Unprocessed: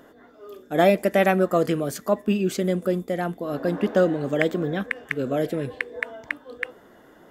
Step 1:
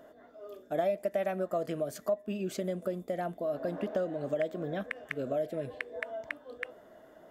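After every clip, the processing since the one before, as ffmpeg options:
-af "equalizer=f=630:t=o:w=0.27:g=14.5,acompressor=threshold=0.0708:ratio=3,volume=0.398"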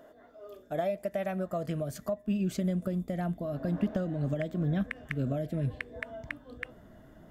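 -af "asubboost=boost=11.5:cutoff=150"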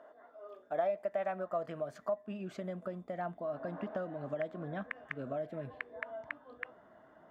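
-af "bandpass=f=1000:t=q:w=1.3:csg=0,volume=1.41"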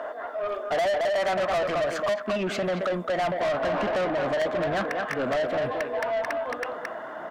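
-filter_complex "[0:a]asplit=2[s0][s1];[s1]adelay=220,highpass=300,lowpass=3400,asoftclip=type=hard:threshold=0.0335,volume=0.447[s2];[s0][s2]amix=inputs=2:normalize=0,asplit=2[s3][s4];[s4]highpass=f=720:p=1,volume=35.5,asoftclip=type=tanh:threshold=0.106[s5];[s3][s5]amix=inputs=2:normalize=0,lowpass=f=4200:p=1,volume=0.501,volume=1.19"

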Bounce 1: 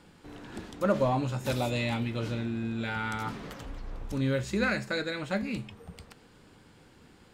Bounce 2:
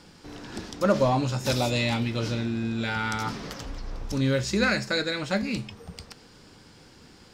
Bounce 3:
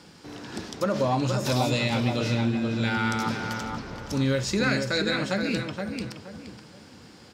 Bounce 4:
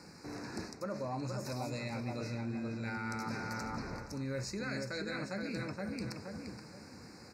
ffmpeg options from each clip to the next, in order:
-af "equalizer=f=5300:w=1.9:g=11,volume=1.58"
-filter_complex "[0:a]highpass=84,alimiter=limit=0.141:level=0:latency=1:release=90,asplit=2[s0][s1];[s1]adelay=472,lowpass=f=2100:p=1,volume=0.596,asplit=2[s2][s3];[s3]adelay=472,lowpass=f=2100:p=1,volume=0.31,asplit=2[s4][s5];[s5]adelay=472,lowpass=f=2100:p=1,volume=0.31,asplit=2[s6][s7];[s7]adelay=472,lowpass=f=2100:p=1,volume=0.31[s8];[s2][s4][s6][s8]amix=inputs=4:normalize=0[s9];[s0][s9]amix=inputs=2:normalize=0,volume=1.19"
-af "areverse,acompressor=threshold=0.0224:ratio=6,areverse,asuperstop=centerf=3200:order=8:qfactor=2.2,volume=0.708"

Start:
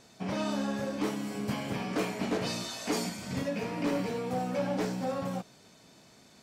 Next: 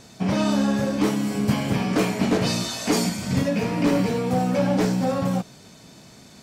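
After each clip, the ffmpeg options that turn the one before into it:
-af "bass=f=250:g=6,treble=f=4000:g=2,volume=2.51"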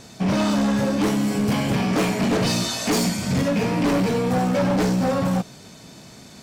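-af "asoftclip=type=hard:threshold=0.0944,volume=1.5"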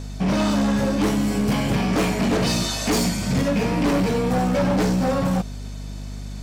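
-af "aeval=exprs='val(0)+0.0282*(sin(2*PI*50*n/s)+sin(2*PI*2*50*n/s)/2+sin(2*PI*3*50*n/s)/3+sin(2*PI*4*50*n/s)/4+sin(2*PI*5*50*n/s)/5)':c=same"

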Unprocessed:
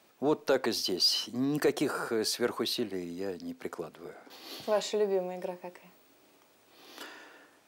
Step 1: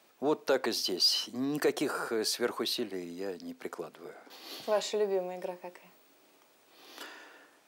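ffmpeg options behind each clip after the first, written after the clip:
-af "highpass=f=250:p=1"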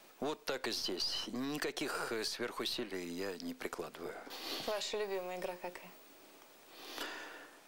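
-filter_complex "[0:a]aeval=exprs='if(lt(val(0),0),0.708*val(0),val(0))':c=same,alimiter=limit=0.0794:level=0:latency=1:release=268,acrossover=split=1000|2100|5700[s0][s1][s2][s3];[s0]acompressor=threshold=0.00562:ratio=4[s4];[s1]acompressor=threshold=0.00224:ratio=4[s5];[s2]acompressor=threshold=0.00501:ratio=4[s6];[s3]acompressor=threshold=0.00141:ratio=4[s7];[s4][s5][s6][s7]amix=inputs=4:normalize=0,volume=1.88"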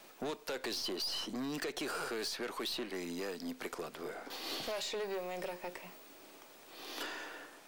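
-af "asoftclip=type=tanh:threshold=0.0158,volume=1.41"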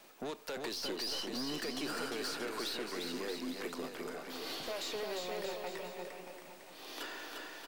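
-af "aecho=1:1:350|630|854|1033|1177:0.631|0.398|0.251|0.158|0.1,volume=0.794"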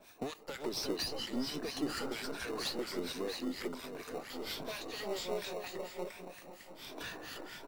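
-filter_complex "[0:a]afftfilt=real='re*pow(10,7/40*sin(2*PI*(1.6*log(max(b,1)*sr/1024/100)/log(2)-(1.3)*(pts-256)/sr)))':imag='im*pow(10,7/40*sin(2*PI*(1.6*log(max(b,1)*sr/1024/100)/log(2)-(1.3)*(pts-256)/sr)))':win_size=1024:overlap=0.75,acrossover=split=1100[s0][s1];[s0]aeval=exprs='val(0)*(1-1/2+1/2*cos(2*PI*4.3*n/s))':c=same[s2];[s1]aeval=exprs='val(0)*(1-1/2-1/2*cos(2*PI*4.3*n/s))':c=same[s3];[s2][s3]amix=inputs=2:normalize=0,asplit=2[s4][s5];[s5]acrusher=samples=27:mix=1:aa=0.000001,volume=0.355[s6];[s4][s6]amix=inputs=2:normalize=0,volume=1.41"

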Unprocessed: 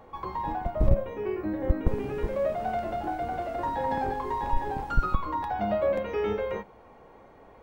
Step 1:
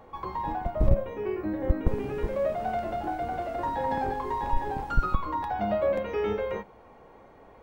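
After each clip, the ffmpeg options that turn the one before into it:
-af anull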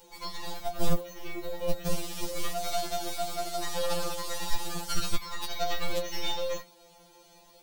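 -af "aexciter=amount=8.8:drive=9.1:freq=2900,aeval=exprs='0.376*(cos(1*acos(clip(val(0)/0.376,-1,1)))-cos(1*PI/2))+0.119*(cos(6*acos(clip(val(0)/0.376,-1,1)))-cos(6*PI/2))':c=same,afftfilt=real='re*2.83*eq(mod(b,8),0)':imag='im*2.83*eq(mod(b,8),0)':win_size=2048:overlap=0.75,volume=0.631"

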